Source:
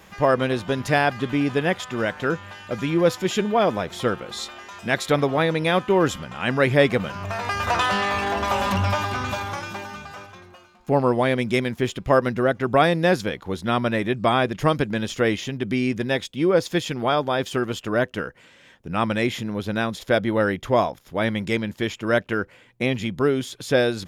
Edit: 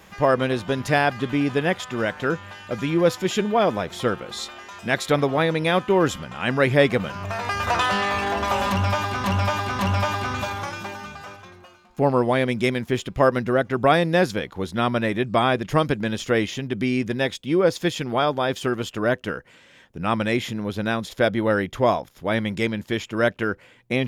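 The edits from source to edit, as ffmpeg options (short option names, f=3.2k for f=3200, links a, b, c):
-filter_complex "[0:a]asplit=3[a][b][c];[a]atrim=end=9.242[d];[b]atrim=start=8.688:end=9.242[e];[c]atrim=start=8.688[f];[d][e]acrossfade=d=0.004:c1=hsin:c2=hsin[g];[g][f]acrossfade=d=0.004:c1=hsin:c2=hsin"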